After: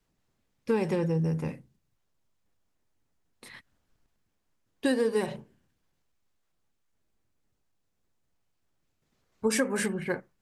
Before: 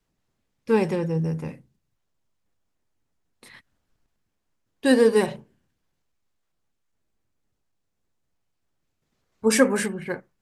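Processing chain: compressor 6:1, threshold -23 dBFS, peak gain reduction 12 dB

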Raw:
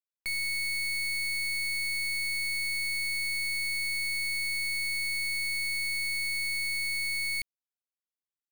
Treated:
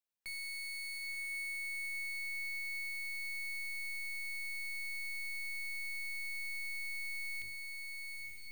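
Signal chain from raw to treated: notches 50/100/150/200/250/300/350/400 Hz; limiter -41.5 dBFS, peak gain reduction 11 dB; on a send: diffused feedback echo 0.92 s, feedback 51%, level -3 dB

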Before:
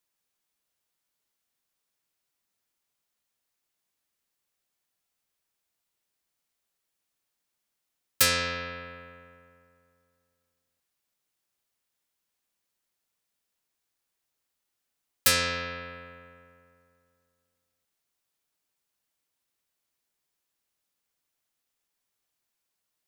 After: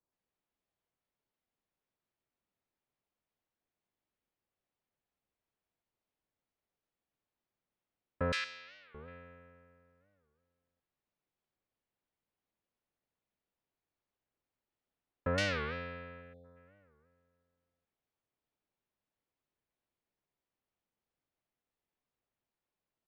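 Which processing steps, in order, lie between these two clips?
8.32–8.96 differentiator; 16.21–16.45 spectral delete 810–3300 Hz; tape spacing loss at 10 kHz 38 dB; bands offset in time lows, highs 0.12 s, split 1400 Hz; record warp 45 rpm, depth 250 cents; gain +1.5 dB

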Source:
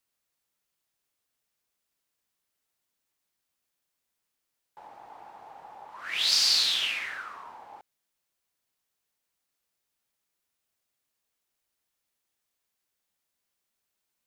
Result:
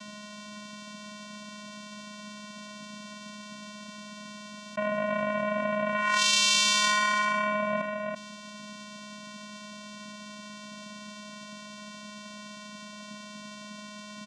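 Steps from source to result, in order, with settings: vocoder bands 4, square 209 Hz; echo 0.331 s -15.5 dB; fast leveller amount 70%

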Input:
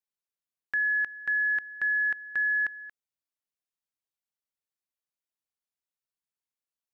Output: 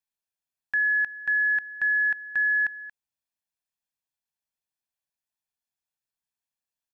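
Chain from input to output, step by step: comb 1.2 ms, depth 43%

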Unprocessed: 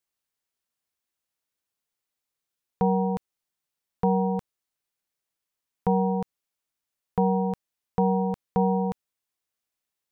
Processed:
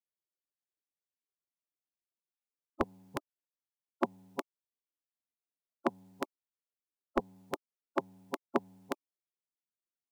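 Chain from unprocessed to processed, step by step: spectral gate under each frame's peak -20 dB weak; bell 330 Hz +14 dB 2.7 oct; gain +8.5 dB

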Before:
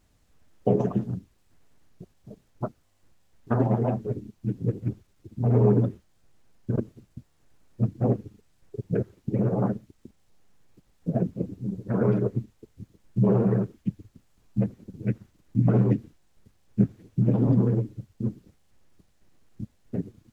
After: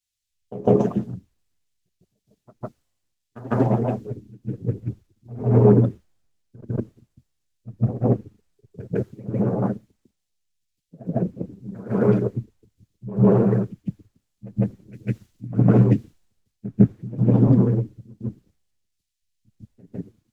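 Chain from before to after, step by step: self-modulated delay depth 0.066 ms; reverse echo 0.153 s -9 dB; three-band expander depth 100%; gain +1.5 dB

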